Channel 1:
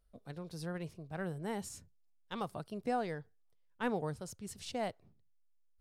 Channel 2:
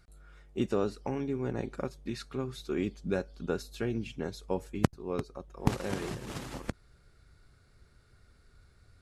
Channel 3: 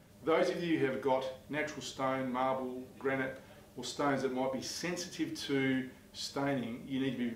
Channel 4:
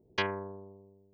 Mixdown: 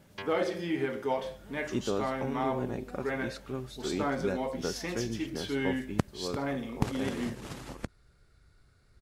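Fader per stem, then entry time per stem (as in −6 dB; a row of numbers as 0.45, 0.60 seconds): −17.0, −2.0, +0.5, −11.0 decibels; 0.00, 1.15, 0.00, 0.00 seconds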